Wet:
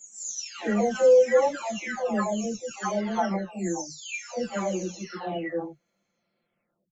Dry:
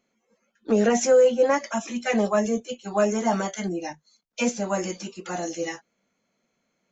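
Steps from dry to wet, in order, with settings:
every frequency bin delayed by itself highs early, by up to 879 ms

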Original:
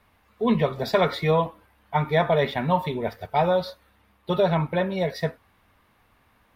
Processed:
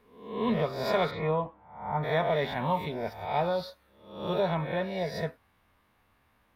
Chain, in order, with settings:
peak hold with a rise ahead of every peak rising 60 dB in 0.63 s
0:01.10–0:02.02: low-pass filter 2,400 Hz → 1,200 Hz 12 dB per octave
level −8 dB

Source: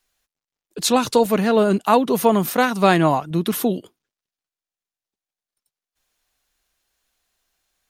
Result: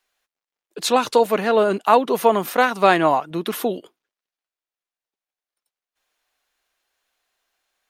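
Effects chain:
bass and treble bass −15 dB, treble −7 dB
level +2 dB

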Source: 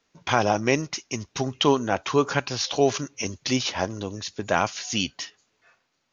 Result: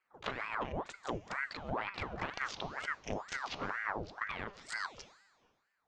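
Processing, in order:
adaptive Wiener filter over 25 samples
echo ahead of the sound 38 ms −13 dB
compressor whose output falls as the input rises −29 dBFS, ratio −1
treble cut that deepens with the level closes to 2,600 Hz, closed at −27.5 dBFS
tuned comb filter 190 Hz, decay 1.4 s, mix 70%
wrong playback speed 24 fps film run at 25 fps
ring modulator whose carrier an LFO sweeps 1,000 Hz, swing 80%, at 2.1 Hz
level +3.5 dB

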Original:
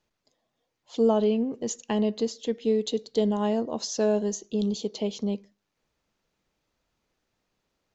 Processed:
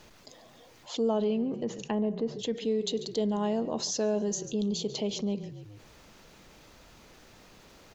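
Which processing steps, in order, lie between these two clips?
0:01.58–0:02.39: treble cut that deepens with the level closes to 1,500 Hz, closed at −26 dBFS
on a send: echo with shifted repeats 141 ms, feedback 38%, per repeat −32 Hz, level −21 dB
on the sum: envelope flattener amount 50%
level −6.5 dB

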